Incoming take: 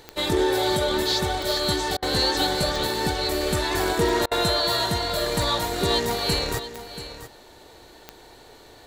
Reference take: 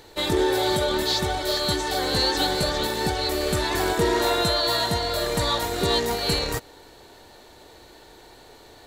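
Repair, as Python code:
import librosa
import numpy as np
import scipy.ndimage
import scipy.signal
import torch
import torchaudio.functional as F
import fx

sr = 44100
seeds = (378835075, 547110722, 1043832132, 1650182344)

y = fx.fix_declick_ar(x, sr, threshold=10.0)
y = fx.fix_interpolate(y, sr, at_s=(1.97, 4.26), length_ms=53.0)
y = fx.fix_echo_inverse(y, sr, delay_ms=683, level_db=-13.0)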